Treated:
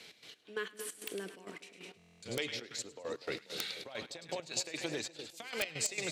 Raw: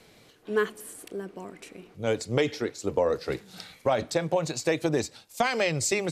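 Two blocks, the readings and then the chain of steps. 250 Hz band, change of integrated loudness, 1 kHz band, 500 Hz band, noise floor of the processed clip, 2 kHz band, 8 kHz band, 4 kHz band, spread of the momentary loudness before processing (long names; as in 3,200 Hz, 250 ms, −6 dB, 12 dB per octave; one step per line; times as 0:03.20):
−15.0 dB, −11.0 dB, −17.0 dB, −15.5 dB, −63 dBFS, −8.5 dB, −5.0 dB, −3.0 dB, 17 LU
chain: dynamic equaliser 5,500 Hz, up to −5 dB, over −50 dBFS, Q 3.2
downward compressor 8 to 1, threshold −31 dBFS, peak gain reduction 12 dB
echo with a time of its own for lows and highs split 900 Hz, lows 244 ms, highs 105 ms, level −8.5 dB
gate pattern "x.x..x.x.xx" 133 BPM −12 dB
meter weighting curve D
wrap-around overflow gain 17 dB
buffer that repeats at 0:01.97, samples 1,024, times 10
level −4 dB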